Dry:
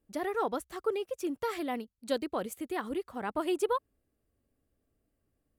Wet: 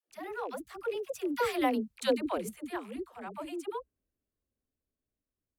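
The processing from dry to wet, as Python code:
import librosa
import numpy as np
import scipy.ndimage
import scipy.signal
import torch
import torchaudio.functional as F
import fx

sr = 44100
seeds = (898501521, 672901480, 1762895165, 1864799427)

y = fx.rattle_buzz(x, sr, strikes_db=-49.0, level_db=-41.0)
y = fx.doppler_pass(y, sr, speed_mps=15, closest_m=4.6, pass_at_s=1.74)
y = fx.dispersion(y, sr, late='lows', ms=100.0, hz=380.0)
y = y * librosa.db_to_amplitude(7.0)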